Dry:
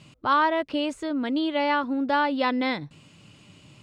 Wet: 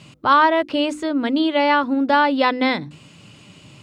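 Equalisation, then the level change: high-pass 57 Hz; hum notches 50/100/150/200/250/300/350 Hz; +7.0 dB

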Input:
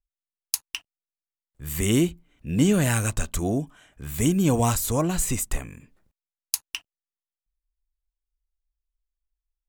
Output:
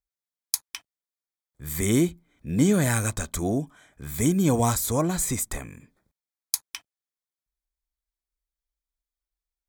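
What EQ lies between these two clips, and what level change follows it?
high-pass 74 Hz 6 dB/octave; Butterworth band-stop 2.8 kHz, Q 5.2; 0.0 dB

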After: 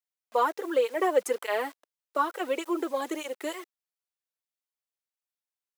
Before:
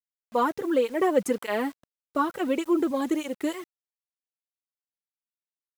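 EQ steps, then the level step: high-pass 400 Hz 24 dB/octave; 0.0 dB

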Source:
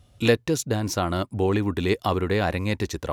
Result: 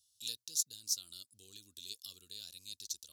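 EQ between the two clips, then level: inverse Chebyshev high-pass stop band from 2.2 kHz, stop band 40 dB; -1.5 dB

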